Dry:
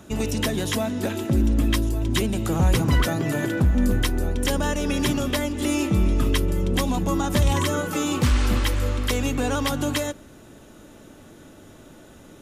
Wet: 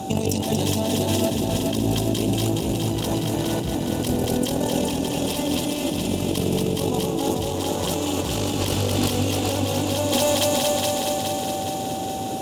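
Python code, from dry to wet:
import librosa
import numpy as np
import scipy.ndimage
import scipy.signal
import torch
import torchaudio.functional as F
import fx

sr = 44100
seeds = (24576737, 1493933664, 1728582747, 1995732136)

p1 = fx.cheby_harmonics(x, sr, harmonics=(4,), levels_db=(-12,), full_scale_db=-10.5)
p2 = scipy.signal.sosfilt(scipy.signal.butter(4, 85.0, 'highpass', fs=sr, output='sos'), p1)
p3 = fx.echo_thinned(p2, sr, ms=232, feedback_pct=56, hz=450.0, wet_db=-3.5)
p4 = p3 + 10.0 ** (-45.0 / 20.0) * np.sin(2.0 * np.pi * 770.0 * np.arange(len(p3)) / sr)
p5 = fx.over_compress(p4, sr, threshold_db=-31.0, ratio=-1.0)
p6 = np.clip(10.0 ** (19.5 / 20.0) * p5, -1.0, 1.0) / 10.0 ** (19.5 / 20.0)
p7 = fx.band_shelf(p6, sr, hz=1600.0, db=-12.5, octaves=1.2)
p8 = p7 + fx.echo_feedback(p7, sr, ms=418, feedback_pct=58, wet_db=-3.5, dry=0)
y = F.gain(torch.from_numpy(p8), 6.0).numpy()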